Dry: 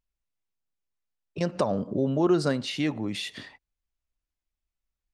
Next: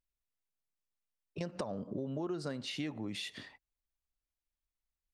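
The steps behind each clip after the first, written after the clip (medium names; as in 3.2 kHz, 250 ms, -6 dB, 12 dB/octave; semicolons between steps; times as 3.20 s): compression 6:1, threshold -28 dBFS, peak gain reduction 10 dB; trim -6.5 dB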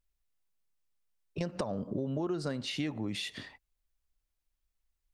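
bass shelf 67 Hz +9.5 dB; trim +3.5 dB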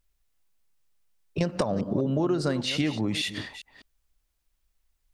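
chunks repeated in reverse 201 ms, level -12 dB; trim +8 dB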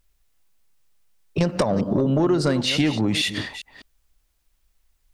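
saturation -17.5 dBFS, distortion -20 dB; trim +7 dB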